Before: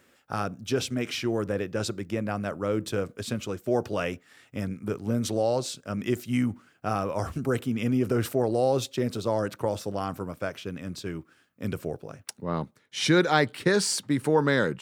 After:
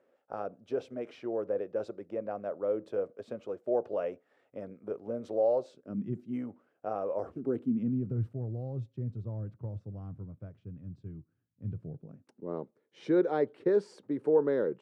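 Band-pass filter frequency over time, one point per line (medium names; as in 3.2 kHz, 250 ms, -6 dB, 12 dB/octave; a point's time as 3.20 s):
band-pass filter, Q 2.4
5.70 s 550 Hz
6.11 s 150 Hz
6.43 s 540 Hz
7.13 s 540 Hz
8.29 s 110 Hz
11.77 s 110 Hz
12.56 s 430 Hz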